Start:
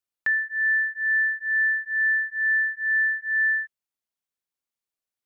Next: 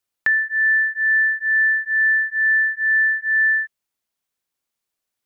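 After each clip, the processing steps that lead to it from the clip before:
downward compressor 1.5 to 1, threshold −28 dBFS, peak gain reduction 3 dB
level +8 dB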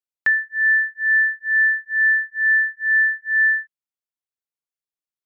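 expander for the loud parts 2.5 to 1, over −27 dBFS
level +2 dB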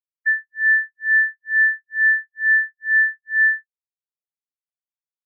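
every bin expanded away from the loudest bin 2.5 to 1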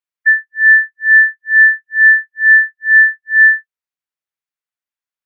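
parametric band 1,700 Hz +8.5 dB 1.9 octaves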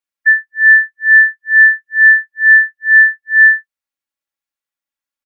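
comb filter 3.6 ms
level +1 dB

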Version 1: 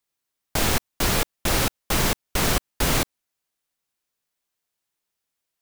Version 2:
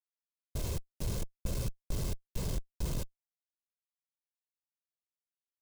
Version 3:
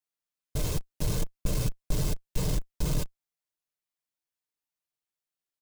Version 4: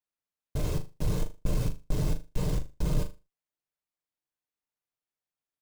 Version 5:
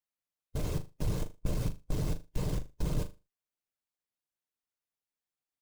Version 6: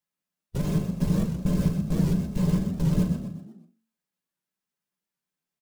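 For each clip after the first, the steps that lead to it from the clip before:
lower of the sound and its delayed copy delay 1.9 ms; comparator with hysteresis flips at −28.5 dBFS; drawn EQ curve 190 Hz 0 dB, 1,700 Hz −23 dB, 6,700 Hz −11 dB
comb filter 6.6 ms, depth 45%; in parallel at −5 dB: centre clipping without the shift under −41.5 dBFS; on the sum: level +2 dB
high-shelf EQ 2,800 Hz −9 dB; on a send: flutter between parallel walls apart 6.7 metres, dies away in 0.27 s
harmonic and percussive parts rebalanced harmonic −8 dB
echo with shifted repeats 124 ms, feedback 42%, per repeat +45 Hz, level −7.5 dB; on a send at −3 dB: convolution reverb RT60 0.20 s, pre-delay 3 ms; on the sum: wow of a warped record 78 rpm, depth 160 cents; level +2.5 dB

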